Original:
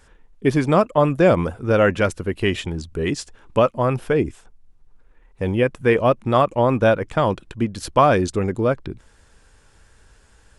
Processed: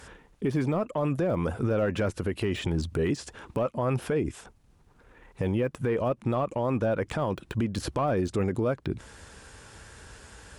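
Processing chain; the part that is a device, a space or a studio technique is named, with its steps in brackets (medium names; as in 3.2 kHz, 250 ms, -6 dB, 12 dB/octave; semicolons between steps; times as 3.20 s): podcast mastering chain (high-pass 64 Hz 12 dB/octave; de-esser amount 100%; compression 4:1, threshold -29 dBFS, peak gain reduction 14.5 dB; peak limiter -27 dBFS, peak gain reduction 10 dB; trim +8.5 dB; MP3 128 kbps 44.1 kHz)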